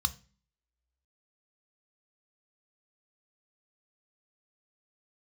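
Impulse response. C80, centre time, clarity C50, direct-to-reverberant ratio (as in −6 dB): 25.0 dB, 3 ms, 19.0 dB, 11.0 dB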